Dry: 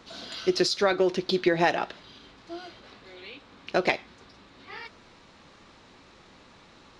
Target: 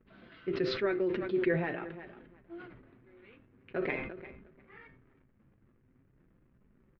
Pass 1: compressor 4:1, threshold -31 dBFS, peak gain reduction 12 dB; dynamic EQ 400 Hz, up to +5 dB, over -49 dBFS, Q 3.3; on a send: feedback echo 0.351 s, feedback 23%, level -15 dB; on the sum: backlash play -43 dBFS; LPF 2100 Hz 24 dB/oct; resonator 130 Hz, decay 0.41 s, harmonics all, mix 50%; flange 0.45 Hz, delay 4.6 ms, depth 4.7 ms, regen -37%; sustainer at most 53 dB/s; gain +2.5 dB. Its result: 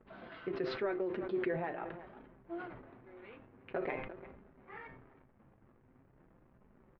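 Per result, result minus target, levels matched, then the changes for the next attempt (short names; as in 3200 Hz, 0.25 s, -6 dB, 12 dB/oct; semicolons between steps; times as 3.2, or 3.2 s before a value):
compressor: peak gain reduction +12 dB; 1000 Hz band +7.0 dB
remove: compressor 4:1, threshold -31 dBFS, peak gain reduction 12 dB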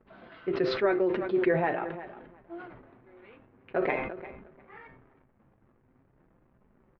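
1000 Hz band +6.0 dB
add after LPF: bell 790 Hz -12 dB 1.5 oct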